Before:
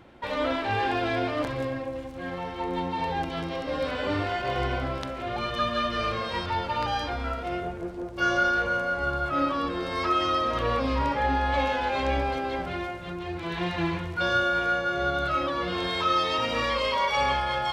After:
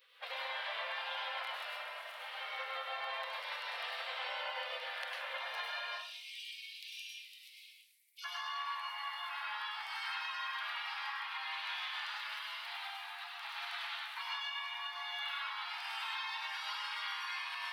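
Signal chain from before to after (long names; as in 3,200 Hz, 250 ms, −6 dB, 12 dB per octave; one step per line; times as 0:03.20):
Butterworth high-pass 580 Hz 72 dB per octave, from 0:05.89 2,600 Hz, from 0:08.24 880 Hz
gate on every frequency bin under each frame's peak −15 dB weak
parametric band 6,800 Hz −15 dB 0.93 octaves
downward compressor, threshold −46 dBFS, peak gain reduction 12 dB
convolution reverb RT60 0.50 s, pre-delay 95 ms, DRR −1.5 dB
level +4.5 dB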